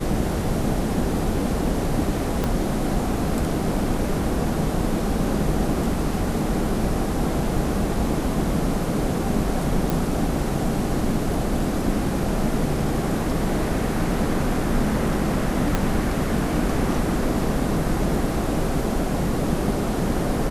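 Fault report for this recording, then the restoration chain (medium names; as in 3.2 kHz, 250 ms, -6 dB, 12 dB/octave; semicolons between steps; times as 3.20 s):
2.44 s: pop -10 dBFS
9.90 s: pop
15.75 s: pop -7 dBFS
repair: de-click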